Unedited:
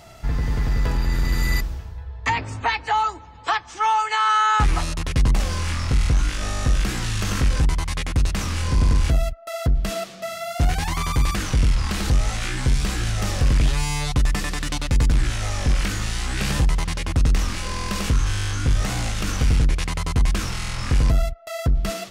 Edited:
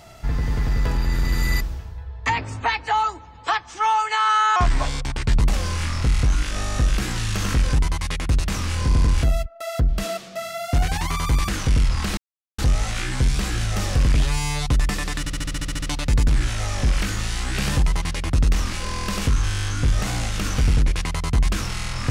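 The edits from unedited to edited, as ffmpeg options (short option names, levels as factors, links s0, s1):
-filter_complex "[0:a]asplit=13[s0][s1][s2][s3][s4][s5][s6][s7][s8][s9][s10][s11][s12];[s0]atrim=end=4.564[s13];[s1]atrim=start=4.56:end=5.26,asetpts=PTS-STARTPTS,asetrate=37044,aresample=44100[s14];[s2]atrim=start=5.256:end=12.04,asetpts=PTS-STARTPTS,afade=t=out:st=6.78:d=0.004:c=hsin,apad=pad_dur=0.41[s15];[s3]atrim=start=12.04:end=14.722,asetpts=PTS-STARTPTS,afade=t=in:d=0.004:c=hsin[s16];[s4]atrim=start=14.648:end=14.722[s17];[s5]atrim=start=14.648:end=14.722[s18];[s6]atrim=start=14.648:end=14.722[s19];[s7]atrim=start=14.648:end=14.722[s20];[s8]atrim=start=14.648:end=14.722[s21];[s9]atrim=start=14.648:end=14.722[s22];[s10]atrim=start=14.648:end=14.722[s23];[s11]atrim=start=14.648:end=14.722[s24];[s12]atrim=start=14.648[s25];[s13][s14]acrossfade=d=0.004:c1=hsin:c2=hsin[s26];[s15][s16]concat=n=2:v=0:a=1[s27];[s26][s27]acrossfade=d=0.004:c1=hsin:c2=hsin[s28];[s28][s17]acrossfade=d=0.004:c1=hsin:c2=hsin[s29];[s29][s18]acrossfade=d=0.004:c1=hsin:c2=hsin[s30];[s30][s19]acrossfade=d=0.004:c1=hsin:c2=hsin[s31];[s31][s20]acrossfade=d=0.004:c1=hsin:c2=hsin[s32];[s32][s21]acrossfade=d=0.004:c1=hsin:c2=hsin[s33];[s33][s22]acrossfade=d=0.004:c1=hsin:c2=hsin[s34];[s34][s23]acrossfade=d=0.004:c1=hsin:c2=hsin[s35];[s35][s24]acrossfade=d=0.004:c1=hsin:c2=hsin[s36];[s36][s25]acrossfade=d=0.004:c1=hsin:c2=hsin"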